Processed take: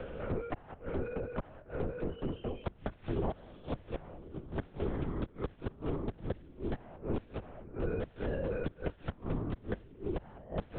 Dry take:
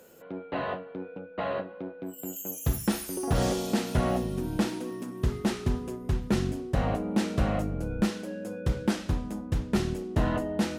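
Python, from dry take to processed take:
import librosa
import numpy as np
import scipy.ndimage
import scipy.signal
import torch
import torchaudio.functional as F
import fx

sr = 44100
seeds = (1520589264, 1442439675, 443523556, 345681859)

y = fx.lowpass(x, sr, hz=3000.0, slope=6)
y = fx.low_shelf(y, sr, hz=87.0, db=-12.0)
y = fx.gate_flip(y, sr, shuts_db=-24.0, range_db=-28)
y = fx.lpc_vocoder(y, sr, seeds[0], excitation='whisper', order=8)
y = fx.band_squash(y, sr, depth_pct=70)
y = y * librosa.db_to_amplitude(3.5)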